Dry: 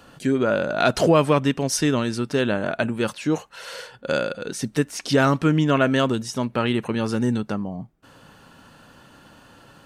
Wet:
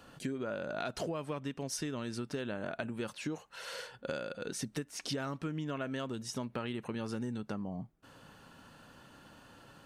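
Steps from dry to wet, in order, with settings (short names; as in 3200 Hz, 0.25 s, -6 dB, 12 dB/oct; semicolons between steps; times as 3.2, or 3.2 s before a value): compressor 10:1, threshold -27 dBFS, peak gain reduction 15.5 dB; gain -7 dB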